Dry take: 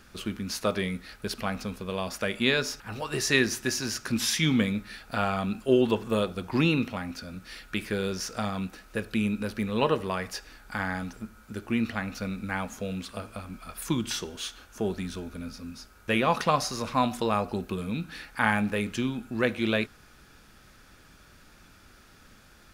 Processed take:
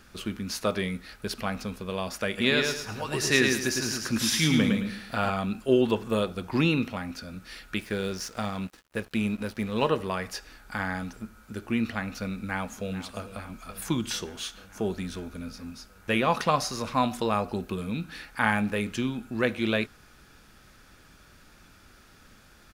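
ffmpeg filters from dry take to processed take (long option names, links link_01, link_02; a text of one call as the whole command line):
ffmpeg -i in.wav -filter_complex "[0:a]asplit=3[link_01][link_02][link_03];[link_01]afade=type=out:start_time=2.37:duration=0.02[link_04];[link_02]aecho=1:1:108|216|324|432:0.631|0.189|0.0568|0.017,afade=type=in:start_time=2.37:duration=0.02,afade=type=out:start_time=5.29:duration=0.02[link_05];[link_03]afade=type=in:start_time=5.29:duration=0.02[link_06];[link_04][link_05][link_06]amix=inputs=3:normalize=0,asettb=1/sr,asplit=3[link_07][link_08][link_09];[link_07]atrim=end=7.794[link_10];[link_08]atrim=start=7.79:end=9.89,asetpts=PTS-STARTPTS,afade=type=in:duration=0.004:curve=qsin,afade=type=out:start_time=2.096:duration=0.004:curve=qsin,aeval=exprs='sgn(val(0))*max(abs(val(0))-0.00447,0)':channel_layout=same[link_11];[link_09]atrim=start=9.886[link_12];[link_10][link_11]acrossfade=duration=0.004:curve1=hsin:curve2=qsin[link_13];[link_13][link_12]acrossfade=duration=0.004:curve1=qsin:curve2=hsin,asplit=2[link_14][link_15];[link_15]afade=type=in:start_time=12.34:duration=0.01,afade=type=out:start_time=12.92:duration=0.01,aecho=0:1:440|880|1320|1760|2200|2640|3080|3520|3960|4400|4840:0.199526|0.149645|0.112234|0.0841751|0.0631313|0.0473485|0.0355114|0.0266335|0.0199752|0.0149814|0.011236[link_16];[link_14][link_16]amix=inputs=2:normalize=0" out.wav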